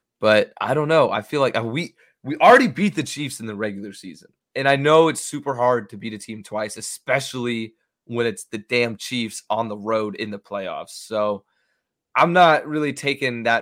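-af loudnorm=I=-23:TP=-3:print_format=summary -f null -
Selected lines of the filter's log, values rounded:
Input Integrated:    -20.3 LUFS
Input True Peak:      -1.4 dBTP
Input LRA:             6.4 LU
Input Threshold:     -31.0 LUFS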